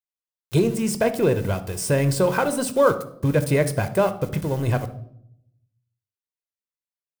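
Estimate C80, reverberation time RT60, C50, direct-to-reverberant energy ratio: 18.0 dB, 0.70 s, 13.0 dB, 10.5 dB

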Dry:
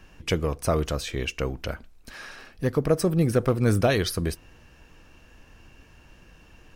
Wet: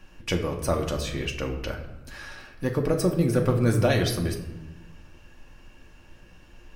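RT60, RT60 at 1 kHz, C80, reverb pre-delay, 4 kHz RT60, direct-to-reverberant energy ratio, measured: 1.0 s, 0.95 s, 10.5 dB, 3 ms, 0.65 s, 1.5 dB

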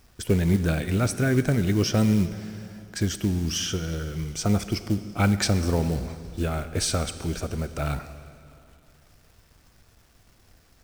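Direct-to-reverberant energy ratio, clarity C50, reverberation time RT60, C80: 11.0 dB, 12.0 dB, 2.7 s, 13.0 dB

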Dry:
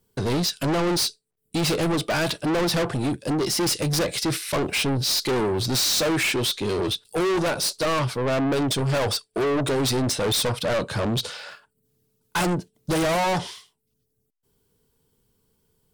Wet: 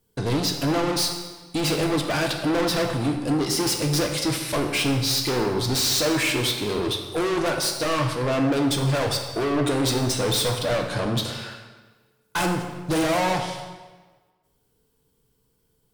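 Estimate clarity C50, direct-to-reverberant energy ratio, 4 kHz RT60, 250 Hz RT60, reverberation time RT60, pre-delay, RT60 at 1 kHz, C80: 5.5 dB, 3.0 dB, 1.1 s, 1.4 s, 1.4 s, 3 ms, 1.3 s, 7.5 dB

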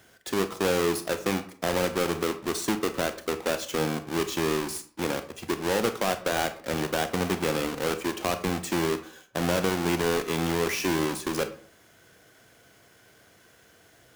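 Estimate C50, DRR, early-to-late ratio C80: 13.0 dB, 9.0 dB, 17.0 dB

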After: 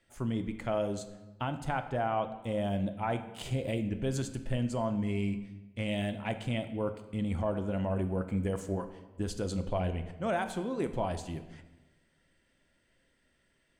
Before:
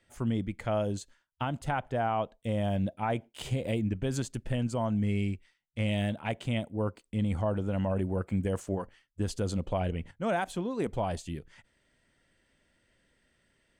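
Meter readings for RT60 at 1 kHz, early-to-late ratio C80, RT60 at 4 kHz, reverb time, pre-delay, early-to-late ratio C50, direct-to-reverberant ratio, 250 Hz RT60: 1.1 s, 13.0 dB, 0.85 s, 1.2 s, 3 ms, 11.0 dB, 8.0 dB, 1.4 s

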